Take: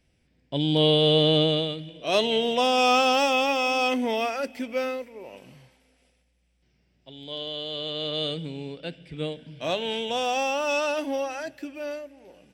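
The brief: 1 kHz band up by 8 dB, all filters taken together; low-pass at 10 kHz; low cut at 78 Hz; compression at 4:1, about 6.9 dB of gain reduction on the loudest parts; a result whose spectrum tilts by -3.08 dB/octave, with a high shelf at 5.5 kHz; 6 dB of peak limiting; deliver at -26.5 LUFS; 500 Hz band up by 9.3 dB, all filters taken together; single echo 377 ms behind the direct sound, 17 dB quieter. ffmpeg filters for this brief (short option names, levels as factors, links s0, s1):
-af "highpass=78,lowpass=10000,equalizer=f=500:t=o:g=8.5,equalizer=f=1000:t=o:g=7.5,highshelf=f=5500:g=-4,acompressor=threshold=0.126:ratio=4,alimiter=limit=0.2:level=0:latency=1,aecho=1:1:377:0.141,volume=0.75"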